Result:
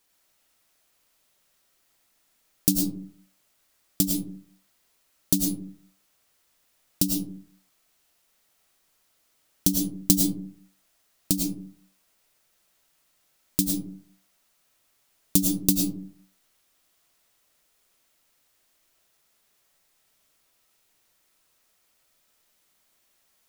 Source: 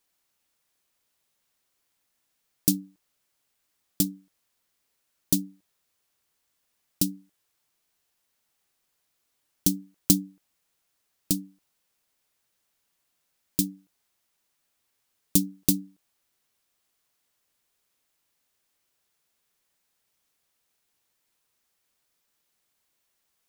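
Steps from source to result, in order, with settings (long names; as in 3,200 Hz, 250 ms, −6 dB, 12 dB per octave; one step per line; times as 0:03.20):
comb and all-pass reverb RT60 0.47 s, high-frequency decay 0.4×, pre-delay 65 ms, DRR 1.5 dB
in parallel at +2 dB: downward compressor, threshold −32 dBFS, peak gain reduction 17.5 dB
on the sum: level −1.5 dB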